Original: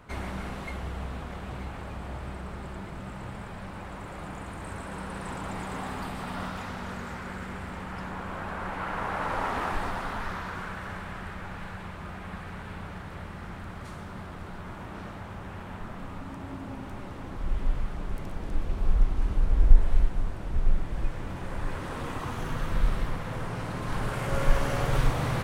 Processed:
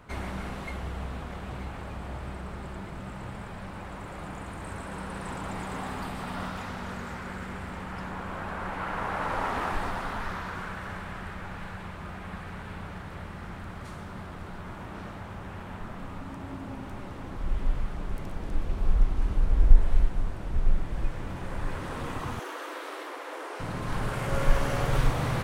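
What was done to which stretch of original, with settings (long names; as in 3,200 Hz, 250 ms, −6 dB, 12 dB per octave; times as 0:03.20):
0:22.39–0:23.60: Butterworth high-pass 290 Hz 96 dB per octave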